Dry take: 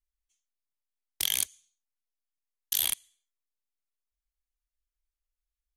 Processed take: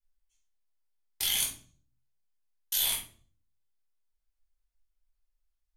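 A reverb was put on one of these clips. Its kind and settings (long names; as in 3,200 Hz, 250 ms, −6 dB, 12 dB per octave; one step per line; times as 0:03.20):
rectangular room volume 410 cubic metres, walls furnished, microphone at 5 metres
level −6.5 dB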